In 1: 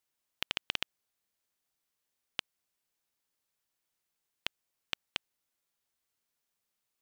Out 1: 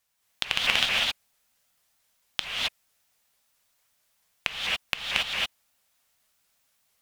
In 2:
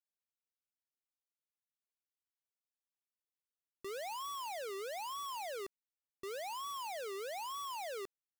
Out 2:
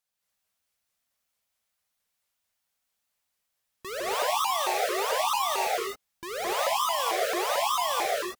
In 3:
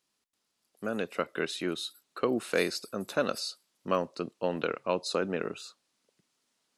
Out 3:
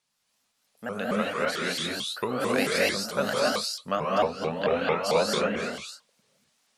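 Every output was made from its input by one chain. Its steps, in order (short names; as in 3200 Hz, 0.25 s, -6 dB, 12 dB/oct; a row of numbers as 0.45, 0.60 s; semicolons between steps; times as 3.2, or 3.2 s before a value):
bell 340 Hz -15 dB 0.45 oct; non-linear reverb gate 0.3 s rising, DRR -5.5 dB; shaped vibrato saw up 4.5 Hz, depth 250 cents; match loudness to -27 LUFS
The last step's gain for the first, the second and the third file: +7.5, +9.5, +1.0 dB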